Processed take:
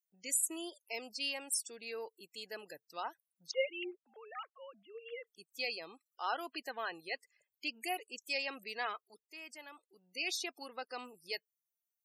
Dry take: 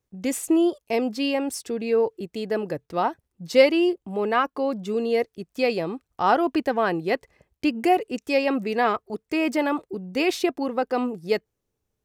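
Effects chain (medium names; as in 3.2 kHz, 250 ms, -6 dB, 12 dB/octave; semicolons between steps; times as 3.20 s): 3.51–5.27 s: formants replaced by sine waves; differentiator; loudest bins only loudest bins 64; 8.85–10.30 s: dip -11 dB, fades 0.39 s; trim +1 dB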